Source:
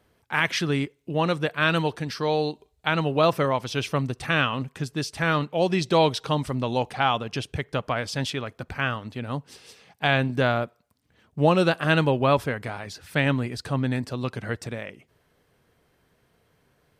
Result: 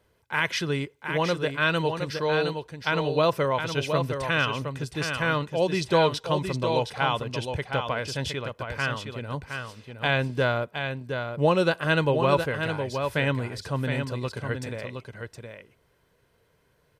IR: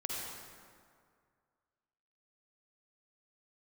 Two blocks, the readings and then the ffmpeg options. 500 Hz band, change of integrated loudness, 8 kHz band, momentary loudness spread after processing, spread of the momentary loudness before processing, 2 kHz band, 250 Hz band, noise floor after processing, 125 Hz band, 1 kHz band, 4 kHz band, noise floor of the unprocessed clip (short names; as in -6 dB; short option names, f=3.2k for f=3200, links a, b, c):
0.0 dB, -1.5 dB, -1.0 dB, 11 LU, 11 LU, -0.5 dB, -3.5 dB, -67 dBFS, -1.5 dB, -1.5 dB, -1.0 dB, -67 dBFS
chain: -filter_complex "[0:a]aecho=1:1:2:0.35,asplit=2[a][b];[b]aecho=0:1:716:0.473[c];[a][c]amix=inputs=2:normalize=0,volume=-2.5dB"